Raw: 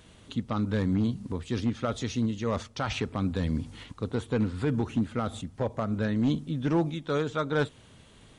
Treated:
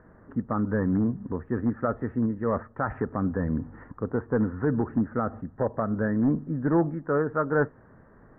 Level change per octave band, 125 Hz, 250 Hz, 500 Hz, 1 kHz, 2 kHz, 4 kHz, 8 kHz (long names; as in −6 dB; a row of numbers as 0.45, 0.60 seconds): 0.0 dB, +2.5 dB, +3.5 dB, +3.5 dB, +2.0 dB, below −40 dB, below −30 dB